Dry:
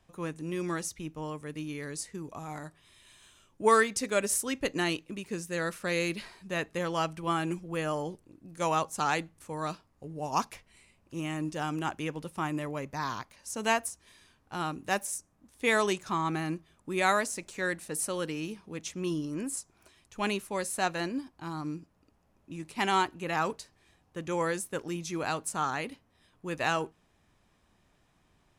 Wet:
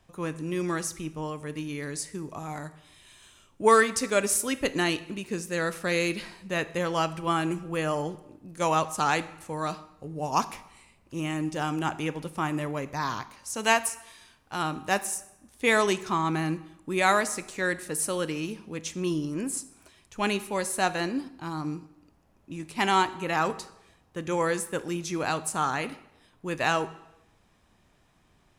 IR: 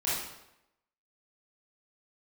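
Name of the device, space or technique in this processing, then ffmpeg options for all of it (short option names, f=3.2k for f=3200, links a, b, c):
saturated reverb return: -filter_complex "[0:a]asettb=1/sr,asplit=3[a][b][c];[a]atrim=end=13.544[d];[b]atrim=start=13.54:end=14.63,asetpts=PTS-STARTPTS,afade=t=in:d=0.004:c=qsin,afade=t=out:st=1.086:d=0.004:c=qsin,tiltshelf=f=700:g=-3[e];[c]atrim=start=14.626[f];[d][e]acrossfade=d=0.004:c1=hsin:c2=qsin[g];[g][f]acrossfade=d=0.004:c1=qsin:c2=hsin,asplit=2[h][i];[1:a]atrim=start_sample=2205[j];[i][j]afir=irnorm=-1:irlink=0,asoftclip=type=tanh:threshold=-13dB,volume=-20.5dB[k];[h][k]amix=inputs=2:normalize=0,volume=3dB"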